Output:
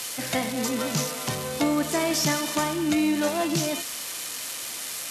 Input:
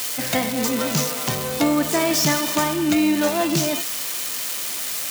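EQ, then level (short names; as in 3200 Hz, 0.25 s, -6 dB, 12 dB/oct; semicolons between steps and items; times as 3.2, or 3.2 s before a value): brick-wall FIR low-pass 13000 Hz; -4.5 dB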